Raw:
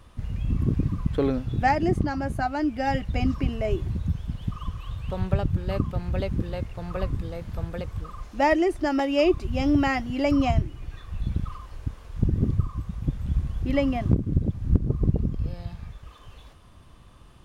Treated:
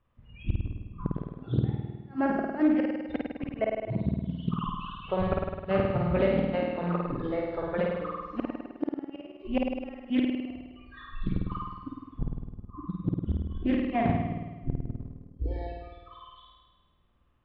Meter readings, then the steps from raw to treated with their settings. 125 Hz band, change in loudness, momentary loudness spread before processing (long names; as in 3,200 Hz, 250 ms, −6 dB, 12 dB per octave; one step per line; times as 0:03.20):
−7.0 dB, −4.5 dB, 13 LU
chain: mains-hum notches 50/100/150 Hz
noise reduction from a noise print of the clip's start 26 dB
low-pass filter 2,900 Hz 24 dB per octave
in parallel at −2.5 dB: downward compressor 12 to 1, threshold −31 dBFS, peak gain reduction 18 dB
on the sum: gate with flip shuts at −16 dBFS, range −35 dB
on a send: flutter between parallel walls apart 8.9 metres, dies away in 1.3 s
on the sum: highs frequency-modulated by the lows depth 0.4 ms